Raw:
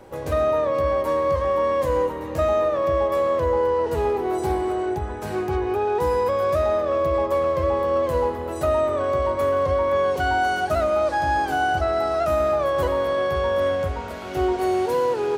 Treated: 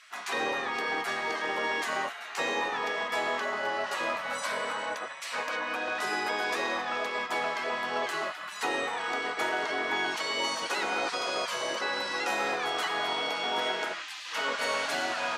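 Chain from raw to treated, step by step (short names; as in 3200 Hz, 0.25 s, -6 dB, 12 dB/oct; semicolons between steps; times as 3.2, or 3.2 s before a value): spectral gate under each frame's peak -20 dB weak; BPF 500–7200 Hz; gain +7.5 dB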